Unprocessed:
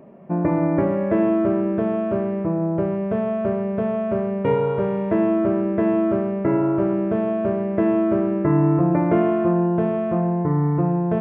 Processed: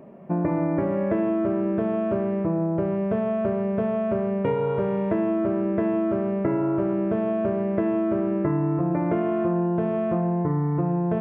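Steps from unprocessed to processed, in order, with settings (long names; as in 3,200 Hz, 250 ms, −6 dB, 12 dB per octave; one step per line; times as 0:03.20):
downward compressor, threshold −20 dBFS, peak gain reduction 7 dB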